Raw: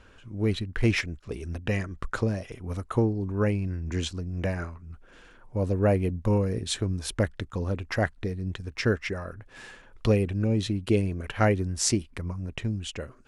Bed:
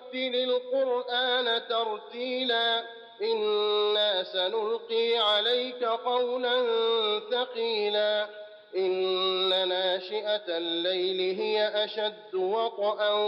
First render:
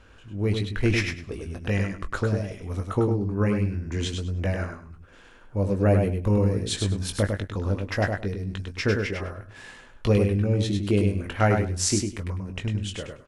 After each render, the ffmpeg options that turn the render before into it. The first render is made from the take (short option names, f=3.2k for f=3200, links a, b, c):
-filter_complex "[0:a]asplit=2[a][b];[b]adelay=20,volume=-7dB[c];[a][c]amix=inputs=2:normalize=0,asplit=2[d][e];[e]aecho=0:1:101|202|303:0.562|0.107|0.0203[f];[d][f]amix=inputs=2:normalize=0"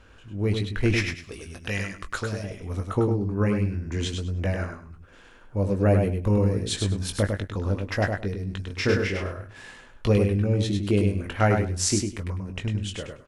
-filter_complex "[0:a]asettb=1/sr,asplit=3[a][b][c];[a]atrim=end=1.154[d];[b]atrim=start=1.15:end=2.44,asetpts=PTS-STARTPTS,afade=t=in:d=0.004:c=qsin,afade=t=out:st=1.286:d=0.004:c=qsin,tiltshelf=f=1.4k:g=-6.5[e];[c]atrim=start=2.436[f];[d][e]acrossfade=d=0.004:c1=hsin:c2=qsin[g];[g][f]acrossfade=d=0.004:c1=qsin:c2=hsin,asettb=1/sr,asplit=3[h][i][j];[h]atrim=end=8.674[k];[i]atrim=start=8.67:end=9.48,asetpts=PTS-STARTPTS,afade=t=in:d=0.004:c=qsin,afade=t=out:st=0.806:d=0.004:c=qsin,asplit=2[l][m];[m]adelay=31,volume=-3dB[n];[l][n]amix=inputs=2:normalize=0,atrim=end_sample=35721[o];[j]atrim=start=9.476[p];[k][o]acrossfade=d=0.004:c1=hsin:c2=qsin[q];[q][p]acrossfade=d=0.004:c1=qsin:c2=hsin"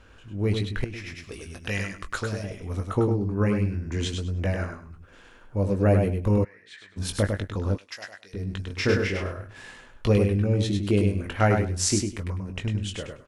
-filter_complex "[0:a]asettb=1/sr,asplit=3[a][b][c];[a]atrim=end=0.844[d];[b]atrim=start=0.84:end=1.29,asetpts=PTS-STARTPTS,afade=t=in:d=0.004:c=qsin,afade=t=out:st=0.446:d=0.004:c=qsin,acompressor=threshold=-33dB:ratio=8:attack=3.2:release=140:knee=1:detection=peak[e];[c]atrim=start=1.286[f];[d][e]acrossfade=d=0.004:c1=hsin:c2=qsin[g];[g][f]acrossfade=d=0.004:c1=qsin:c2=hsin,asplit=3[h][i][j];[h]afade=t=out:st=6.43:d=0.02[k];[i]bandpass=f=1.9k:t=q:w=5.3,afade=t=in:st=6.43:d=0.02,afade=t=out:st=6.96:d=0.02[l];[j]afade=t=in:st=6.96:d=0.02[m];[k][l][m]amix=inputs=3:normalize=0,asplit=3[n][o][p];[n]afade=t=out:st=7.76:d=0.02[q];[o]bandpass=f=6k:t=q:w=0.87,afade=t=in:st=7.76:d=0.02,afade=t=out:st=8.33:d=0.02[r];[p]afade=t=in:st=8.33:d=0.02[s];[q][r][s]amix=inputs=3:normalize=0"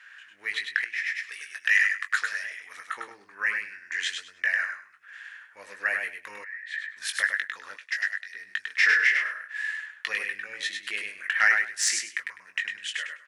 -af "highpass=f=1.8k:t=q:w=8.5,asoftclip=type=tanh:threshold=-8.5dB"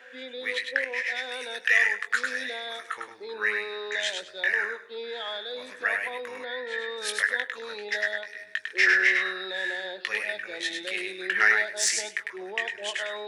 -filter_complex "[1:a]volume=-10.5dB[a];[0:a][a]amix=inputs=2:normalize=0"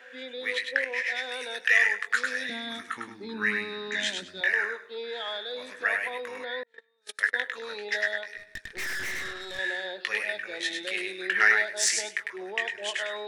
-filter_complex "[0:a]asettb=1/sr,asplit=3[a][b][c];[a]atrim=end=2.494[d];[b]atrim=start=2.49:end=4.41,asetpts=PTS-STARTPTS,afade=t=in:d=0.004:c=qsin,afade=t=out:st=1.916:d=0.004:c=qsin,lowshelf=f=350:t=q:w=3:g=11.5[e];[c]atrim=start=4.406[f];[d][e]acrossfade=d=0.004:c1=hsin:c2=qsin[g];[g][f]acrossfade=d=0.004:c1=qsin:c2=hsin,asettb=1/sr,asplit=3[h][i][j];[h]atrim=end=6.634[k];[i]atrim=start=6.63:end=7.34,asetpts=PTS-STARTPTS,afade=t=in:d=0.004:c=qsin,afade=t=out:st=0.706:d=0.004:c=qsin,agate=range=-38dB:threshold=-28dB:ratio=16:release=100:detection=peak[l];[j]atrim=start=7.336[m];[k][l]acrossfade=d=0.004:c1=hsin:c2=qsin[n];[n][m]acrossfade=d=0.004:c1=qsin:c2=hsin,asettb=1/sr,asplit=3[o][p][q];[o]atrim=end=8.374[r];[p]atrim=start=8.37:end=9.59,asetpts=PTS-STARTPTS,afade=t=in:d=0.004:c=qsin,afade=t=out:st=1.216:d=0.004:c=qsin,aeval=exprs='(tanh(39.8*val(0)+0.75)-tanh(0.75))/39.8':c=same[s];[q]atrim=start=9.586[t];[r][s]acrossfade=d=0.004:c1=hsin:c2=qsin[u];[u][t]acrossfade=d=0.004:c1=qsin:c2=hsin"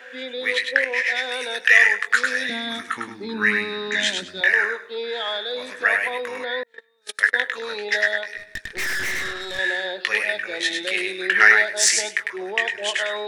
-af "volume=7.5dB"